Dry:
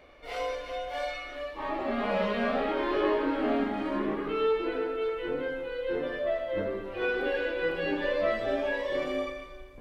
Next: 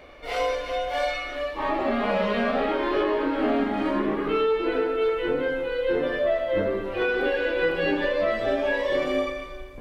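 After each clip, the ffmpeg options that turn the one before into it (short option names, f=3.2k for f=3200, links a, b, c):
-af "alimiter=limit=-22dB:level=0:latency=1:release=290,volume=7.5dB"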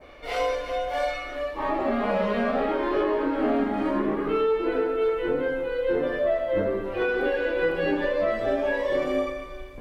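-af "adynamicequalizer=threshold=0.00562:dfrequency=3400:dqfactor=0.77:tfrequency=3400:tqfactor=0.77:attack=5:release=100:ratio=0.375:range=3:mode=cutabove:tftype=bell"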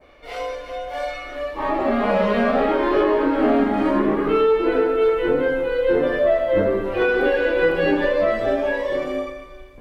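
-af "dynaudnorm=f=270:g=11:m=9.5dB,volume=-3dB"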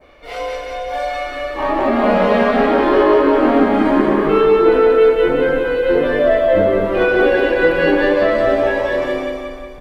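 -af "aecho=1:1:182|364|546|728|910|1092|1274:0.668|0.341|0.174|0.0887|0.0452|0.0231|0.0118,volume=3.5dB"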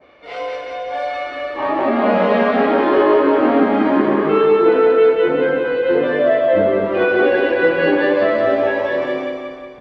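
-af "highpass=120,lowpass=4.2k,volume=-1dB"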